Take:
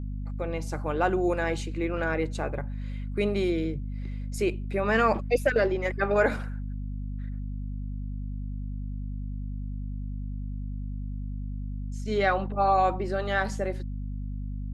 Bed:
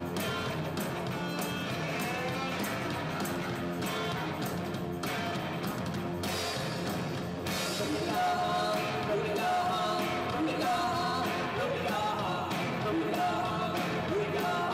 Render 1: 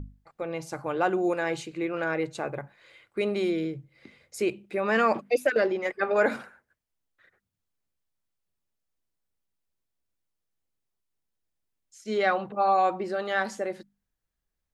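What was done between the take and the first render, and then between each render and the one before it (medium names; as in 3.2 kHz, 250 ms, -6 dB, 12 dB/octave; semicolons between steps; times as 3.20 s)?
hum notches 50/100/150/200/250 Hz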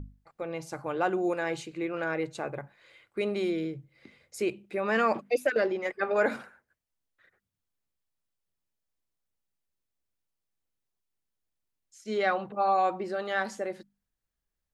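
trim -2.5 dB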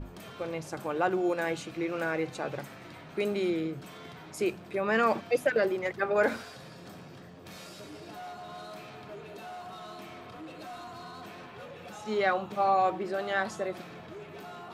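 add bed -13.5 dB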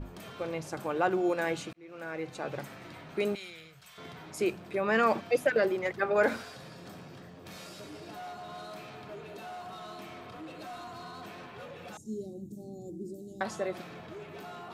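1.73–2.64 s: fade in linear; 3.35–3.98 s: amplifier tone stack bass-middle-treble 10-0-10; 11.97–13.41 s: Chebyshev band-stop 310–7100 Hz, order 3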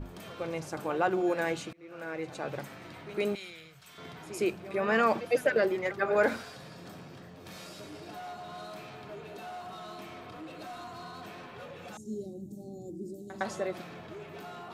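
reverse echo 109 ms -15 dB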